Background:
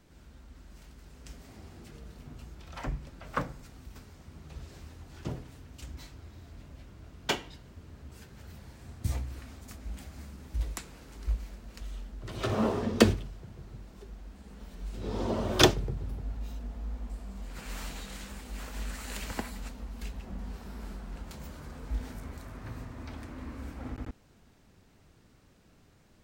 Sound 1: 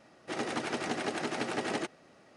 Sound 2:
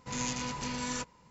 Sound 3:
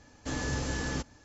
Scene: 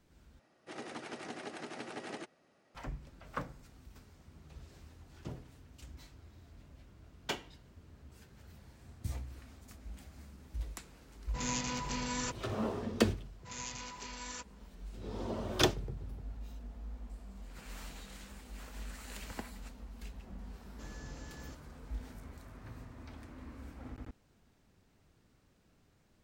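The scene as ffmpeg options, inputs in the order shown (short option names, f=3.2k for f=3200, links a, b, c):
-filter_complex "[2:a]asplit=2[a][b];[0:a]volume=-7.5dB[c];[b]highpass=f=680:p=1[d];[c]asplit=2[e][f];[e]atrim=end=0.394[g];[1:a]atrim=end=2.36,asetpts=PTS-STARTPTS,volume=-10.5dB[h];[f]atrim=start=2.746[i];[a]atrim=end=1.3,asetpts=PTS-STARTPTS,volume=-1.5dB,afade=t=in:d=0.004:c=hsin,afade=t=out:st=1.296:d=0.004:c=hsin,adelay=11280[j];[d]atrim=end=1.3,asetpts=PTS-STARTPTS,volume=-7dB,afade=t=in:d=0.004:c=hsin,afade=t=out:st=1.296:d=0.004:c=hsin,adelay=13390[k];[3:a]atrim=end=1.24,asetpts=PTS-STARTPTS,volume=-17.5dB,afade=t=in:d=0.004:c=hsin,afade=t=out:st=1.236:d=0.004:c=hsin,adelay=20530[l];[g][h]acrossfade=d=0.004:c1=hsin:c2=hsin[m];[m][i]acrossfade=d=0.004:c1=hsin:c2=hsin[n];[n][j][k][l]amix=inputs=4:normalize=0"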